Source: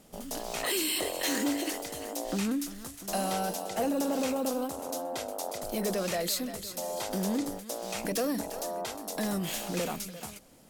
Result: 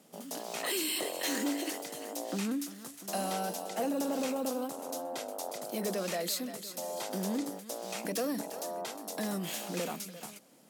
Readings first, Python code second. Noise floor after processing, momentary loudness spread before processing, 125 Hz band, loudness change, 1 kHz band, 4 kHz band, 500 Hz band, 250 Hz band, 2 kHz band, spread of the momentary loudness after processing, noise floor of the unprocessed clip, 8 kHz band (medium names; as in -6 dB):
-51 dBFS, 7 LU, -4.5 dB, -3.0 dB, -3.0 dB, -3.0 dB, -3.0 dB, -3.5 dB, -3.0 dB, 7 LU, -47 dBFS, -3.0 dB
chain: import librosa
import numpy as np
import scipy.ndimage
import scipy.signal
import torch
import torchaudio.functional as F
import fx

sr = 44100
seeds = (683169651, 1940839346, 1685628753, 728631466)

y = scipy.signal.sosfilt(scipy.signal.butter(4, 160.0, 'highpass', fs=sr, output='sos'), x)
y = y * librosa.db_to_amplitude(-3.0)